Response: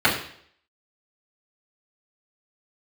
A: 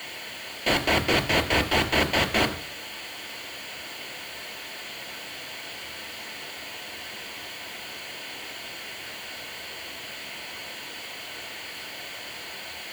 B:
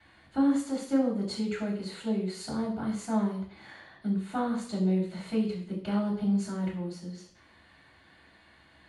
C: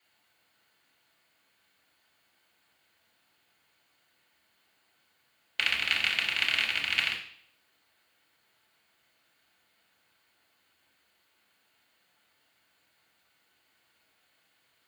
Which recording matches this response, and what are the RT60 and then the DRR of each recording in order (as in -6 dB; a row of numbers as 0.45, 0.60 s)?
B; 0.60, 0.60, 0.60 s; 5.5, -11.0, -4.0 dB